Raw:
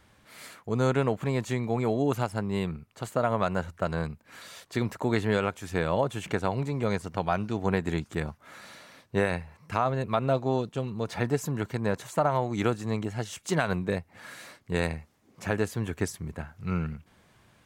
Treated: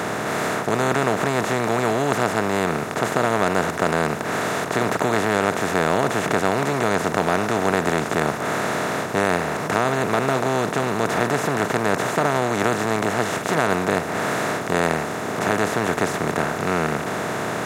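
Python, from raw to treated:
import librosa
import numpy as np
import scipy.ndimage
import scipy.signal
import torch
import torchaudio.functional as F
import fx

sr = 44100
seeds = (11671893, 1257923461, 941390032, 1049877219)

y = fx.bin_compress(x, sr, power=0.2)
y = scipy.signal.sosfilt(scipy.signal.butter(2, 120.0, 'highpass', fs=sr, output='sos'), y)
y = fx.peak_eq(y, sr, hz=1800.0, db=2.5, octaves=0.77)
y = fx.notch(y, sr, hz=540.0, q=12.0)
y = y * librosa.db_to_amplitude(-1.5)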